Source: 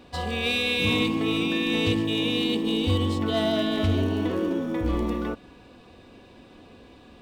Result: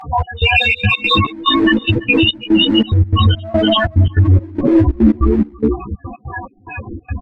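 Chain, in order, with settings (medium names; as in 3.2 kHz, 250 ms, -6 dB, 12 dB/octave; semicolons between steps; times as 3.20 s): random holes in the spectrogram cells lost 37%; treble shelf 4.7 kHz -10 dB; hum notches 60/120/180/240/300/360/420/480/540 Hz; loudest bins only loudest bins 4; in parallel at -10.5 dB: one-sided clip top -32 dBFS, bottom -22 dBFS; on the sum: graphic EQ 125/250/500/1000/2000/4000/8000 Hz +8/-11/-4/+3/+10/+4/+3 dB; on a send: delay 334 ms -4 dB; on the sum: compression 12:1, threshold -33 dBFS, peak gain reduction 16.5 dB; trance gate "xx..xxx.x." 144 bpm -24 dB; loudness maximiser +35.5 dB; three-phase chorus; trim -1 dB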